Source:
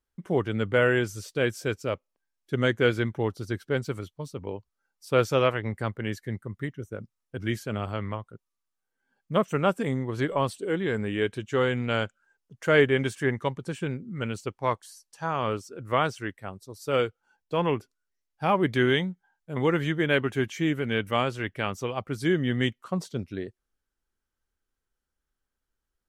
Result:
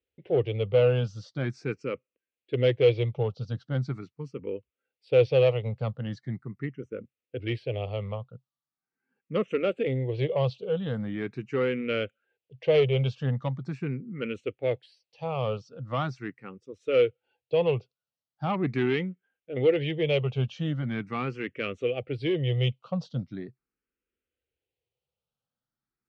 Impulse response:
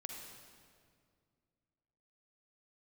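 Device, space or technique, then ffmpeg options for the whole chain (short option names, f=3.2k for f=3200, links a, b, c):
barber-pole phaser into a guitar amplifier: -filter_complex "[0:a]asplit=2[a][b];[b]afreqshift=0.41[c];[a][c]amix=inputs=2:normalize=1,asoftclip=type=tanh:threshold=-19dB,highpass=82,equalizer=f=130:t=q:w=4:g=8,equalizer=f=490:t=q:w=4:g=8,equalizer=f=990:t=q:w=4:g=-7,equalizer=f=1.6k:t=q:w=4:g=-7,equalizer=f=2.6k:t=q:w=4:g=6,lowpass=f=4.4k:w=0.5412,lowpass=f=4.4k:w=1.3066"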